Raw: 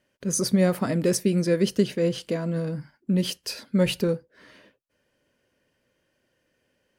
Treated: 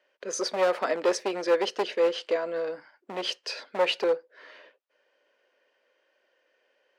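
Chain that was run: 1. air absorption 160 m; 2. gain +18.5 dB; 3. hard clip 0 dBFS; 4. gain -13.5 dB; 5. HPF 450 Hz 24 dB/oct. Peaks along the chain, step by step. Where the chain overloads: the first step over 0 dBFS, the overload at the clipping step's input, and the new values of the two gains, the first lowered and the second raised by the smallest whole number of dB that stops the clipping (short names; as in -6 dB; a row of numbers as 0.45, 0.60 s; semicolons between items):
-9.0, +9.5, 0.0, -13.5, -13.0 dBFS; step 2, 9.5 dB; step 2 +8.5 dB, step 4 -3.5 dB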